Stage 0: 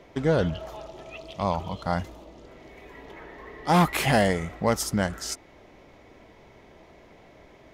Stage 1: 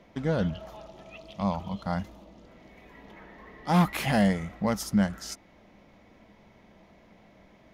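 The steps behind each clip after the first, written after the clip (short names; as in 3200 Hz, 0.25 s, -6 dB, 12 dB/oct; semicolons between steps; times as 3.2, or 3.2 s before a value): thirty-one-band EQ 200 Hz +11 dB, 400 Hz -6 dB, 8000 Hz -5 dB; gain -5 dB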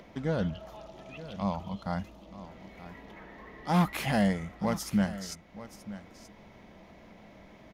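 in parallel at -2 dB: upward compressor, threshold -34 dBFS; on the sum: echo 0.929 s -15 dB; gain -8 dB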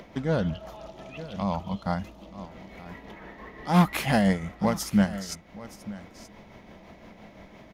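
tremolo 5.8 Hz, depth 41%; gain +6 dB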